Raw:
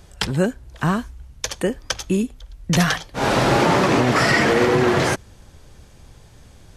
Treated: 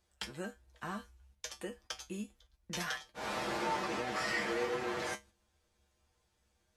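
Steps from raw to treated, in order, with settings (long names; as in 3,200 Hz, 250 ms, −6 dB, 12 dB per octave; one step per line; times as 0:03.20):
tuned comb filter 69 Hz, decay 0.17 s, harmonics odd, mix 90%
noise gate −45 dBFS, range −7 dB
low-shelf EQ 290 Hz −10.5 dB
level −9 dB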